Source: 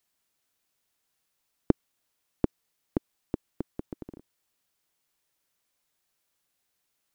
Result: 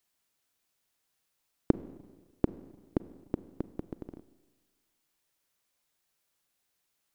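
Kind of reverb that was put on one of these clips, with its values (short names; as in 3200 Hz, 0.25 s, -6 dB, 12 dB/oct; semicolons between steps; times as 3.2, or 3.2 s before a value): Schroeder reverb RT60 1.4 s, combs from 33 ms, DRR 15.5 dB; gain -1 dB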